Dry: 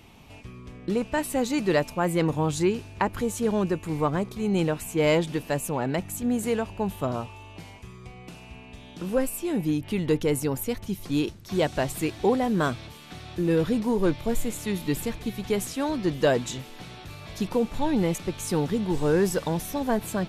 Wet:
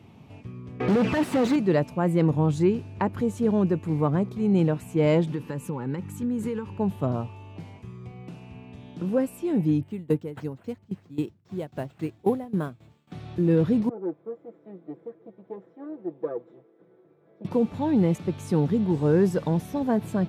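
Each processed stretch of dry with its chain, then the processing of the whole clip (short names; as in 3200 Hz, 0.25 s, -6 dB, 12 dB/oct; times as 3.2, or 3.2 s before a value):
0.8–1.56 envelope flanger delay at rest 2.8 ms, full sweep at -20.5 dBFS + overdrive pedal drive 41 dB, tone 2800 Hz, clips at -16 dBFS
5.31–6.78 bell 1100 Hz +3.5 dB 1.7 oct + compressor 10:1, threshold -26 dBFS + Butterworth band-stop 670 Hz, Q 2.6
9.83–13.12 tremolo saw down 3.7 Hz, depth 85% + careless resampling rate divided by 4×, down none, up hold + upward expander, over -40 dBFS
13.89–17.45 minimum comb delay 0.54 ms + ladder band-pass 500 Hz, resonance 50% + comb 6 ms
whole clip: HPF 100 Hz 24 dB/oct; tilt -3 dB/oct; gain -3 dB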